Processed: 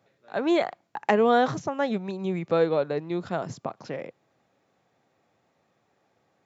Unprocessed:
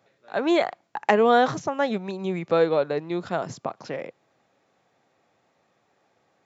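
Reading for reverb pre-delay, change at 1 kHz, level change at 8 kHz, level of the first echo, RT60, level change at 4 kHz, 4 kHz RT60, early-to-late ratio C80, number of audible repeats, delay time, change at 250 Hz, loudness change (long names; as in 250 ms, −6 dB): no reverb audible, −3.0 dB, can't be measured, no echo audible, no reverb audible, −3.5 dB, no reverb audible, no reverb audible, no echo audible, no echo audible, −0.5 dB, −2.0 dB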